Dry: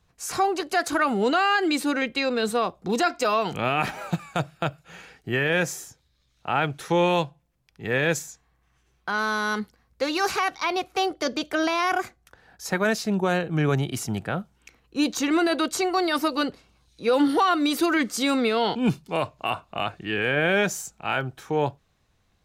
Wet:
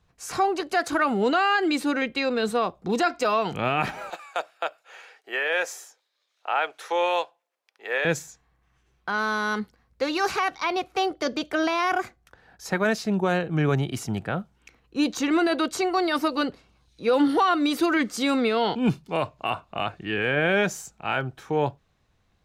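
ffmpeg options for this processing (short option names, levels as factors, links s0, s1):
-filter_complex "[0:a]asettb=1/sr,asplit=3[s0][s1][s2];[s0]atrim=end=4.104[s3];[s1]atrim=start=4.1:end=8.05,asetpts=PTS-STARTPTS,afade=t=in:d=0.004:c=qsin,afade=t=out:st=3.946:d=0.004:c=qsin,highpass=f=480:w=0.5412,highpass=f=480:w=1.3066[s4];[s2]atrim=start=8.046[s5];[s3][s4]acrossfade=d=0.004:c1=hsin:c2=qsin[s6];[s6][s5]acrossfade=d=0.004:c1=qsin:c2=hsin,highshelf=f=5800:g=-7"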